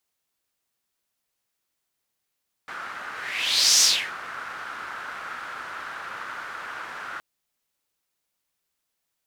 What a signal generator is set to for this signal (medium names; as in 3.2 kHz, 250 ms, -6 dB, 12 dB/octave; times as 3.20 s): whoosh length 4.52 s, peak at 1.13 s, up 0.75 s, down 0.34 s, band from 1.4 kHz, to 5.8 kHz, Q 3.6, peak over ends 19 dB